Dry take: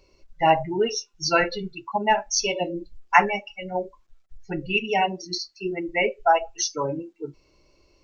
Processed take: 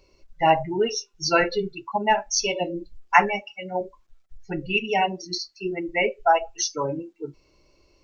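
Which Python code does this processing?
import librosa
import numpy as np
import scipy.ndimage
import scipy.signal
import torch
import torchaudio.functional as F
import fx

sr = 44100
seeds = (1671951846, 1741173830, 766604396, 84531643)

y = fx.peak_eq(x, sr, hz=410.0, db=10.0, octaves=0.25, at=(0.99, 1.83))
y = fx.highpass(y, sr, hz=140.0, slope=12, at=(3.41, 3.81))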